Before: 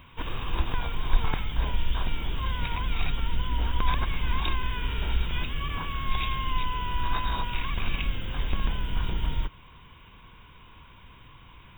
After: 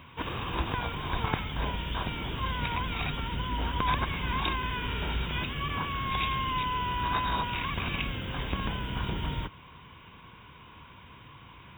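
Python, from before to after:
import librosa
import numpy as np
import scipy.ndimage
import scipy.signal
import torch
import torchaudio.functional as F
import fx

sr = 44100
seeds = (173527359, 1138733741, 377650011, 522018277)

y = scipy.signal.sosfilt(scipy.signal.butter(2, 86.0, 'highpass', fs=sr, output='sos'), x)
y = fx.high_shelf(y, sr, hz=4500.0, db=-7.0)
y = y * librosa.db_to_amplitude(3.0)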